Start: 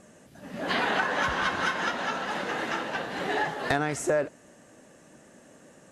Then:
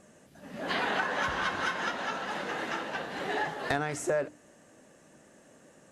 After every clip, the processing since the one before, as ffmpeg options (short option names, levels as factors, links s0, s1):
-af "bandreject=f=60:t=h:w=6,bandreject=f=120:t=h:w=6,bandreject=f=180:t=h:w=6,bandreject=f=240:t=h:w=6,bandreject=f=300:t=h:w=6,volume=0.668"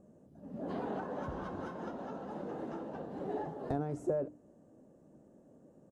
-af "firequalizer=gain_entry='entry(290,0);entry(1900,-27);entry(7400,-22)':delay=0.05:min_phase=1"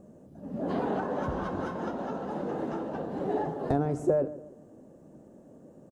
-filter_complex "[0:a]asplit=2[s0][s1];[s1]adelay=143,lowpass=f=1400:p=1,volume=0.178,asplit=2[s2][s3];[s3]adelay=143,lowpass=f=1400:p=1,volume=0.41,asplit=2[s4][s5];[s5]adelay=143,lowpass=f=1400:p=1,volume=0.41,asplit=2[s6][s7];[s7]adelay=143,lowpass=f=1400:p=1,volume=0.41[s8];[s0][s2][s4][s6][s8]amix=inputs=5:normalize=0,volume=2.51"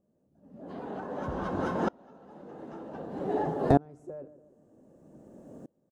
-af "aeval=exprs='val(0)*pow(10,-29*if(lt(mod(-0.53*n/s,1),2*abs(-0.53)/1000),1-mod(-0.53*n/s,1)/(2*abs(-0.53)/1000),(mod(-0.53*n/s,1)-2*abs(-0.53)/1000)/(1-2*abs(-0.53)/1000))/20)':c=same,volume=2.11"